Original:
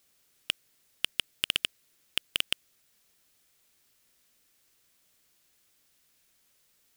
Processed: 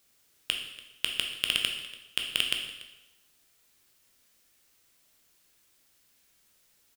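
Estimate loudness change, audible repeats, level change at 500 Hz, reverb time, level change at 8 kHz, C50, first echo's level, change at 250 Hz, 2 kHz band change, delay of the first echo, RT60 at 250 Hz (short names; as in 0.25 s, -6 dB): +2.0 dB, 1, +2.0 dB, 1.0 s, +2.0 dB, 5.5 dB, -19.0 dB, +2.5 dB, +2.5 dB, 0.288 s, 1.0 s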